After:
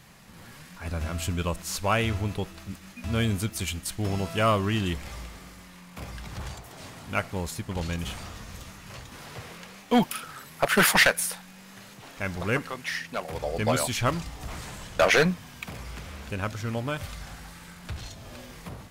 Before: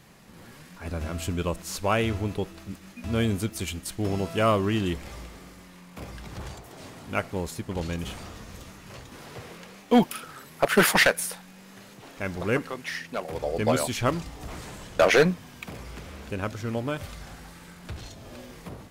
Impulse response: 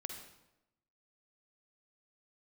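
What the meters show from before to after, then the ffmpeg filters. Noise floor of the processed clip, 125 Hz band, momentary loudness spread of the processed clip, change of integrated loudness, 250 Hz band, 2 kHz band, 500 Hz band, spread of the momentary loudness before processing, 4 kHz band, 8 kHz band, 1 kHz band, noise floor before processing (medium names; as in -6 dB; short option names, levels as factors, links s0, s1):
-48 dBFS, +1.0 dB, 21 LU, -0.5 dB, -2.0 dB, +1.0 dB, -3.0 dB, 22 LU, +1.5 dB, +2.0 dB, 0.0 dB, -49 dBFS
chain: -filter_complex "[0:a]equalizer=f=360:w=0.86:g=-6.5,asplit=2[s0][s1];[s1]asoftclip=type=tanh:threshold=0.0794,volume=0.335[s2];[s0][s2]amix=inputs=2:normalize=0"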